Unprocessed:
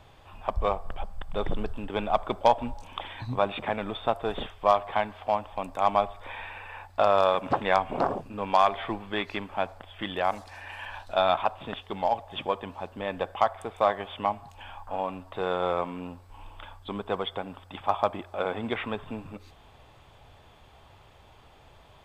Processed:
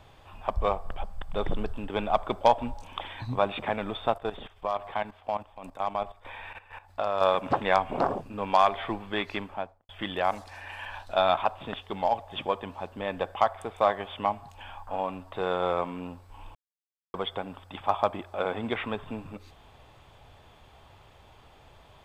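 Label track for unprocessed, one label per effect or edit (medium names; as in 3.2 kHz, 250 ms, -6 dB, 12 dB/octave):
4.140000	7.210000	level held to a coarse grid steps of 14 dB
9.380000	9.890000	studio fade out
16.550000	17.140000	mute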